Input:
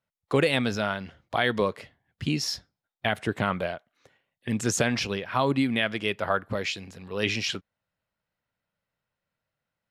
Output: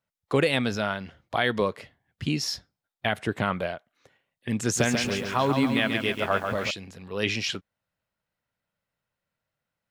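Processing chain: 4.62–6.71 s: bit-crushed delay 138 ms, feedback 55%, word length 8-bit, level -5.5 dB

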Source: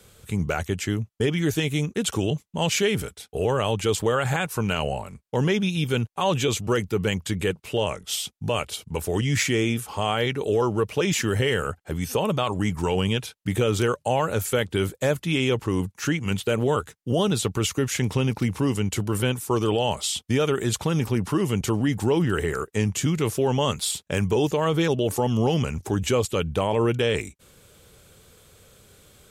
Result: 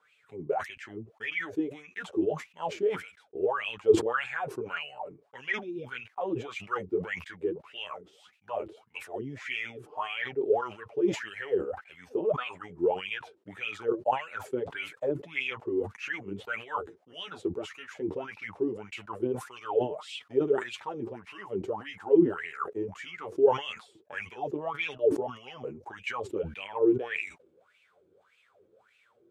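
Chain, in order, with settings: flange 0.2 Hz, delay 6.5 ms, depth 5.8 ms, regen +6%; wah-wah 1.7 Hz 330–2600 Hz, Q 10; decay stretcher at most 140 dB/s; trim +8.5 dB

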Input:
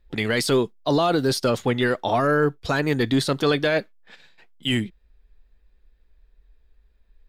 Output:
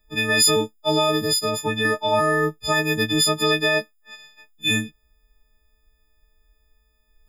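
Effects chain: partials quantised in pitch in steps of 6 st; 1.19–1.85 s: compression 2.5:1, threshold -18 dBFS, peak gain reduction 5.5 dB; trim -2 dB

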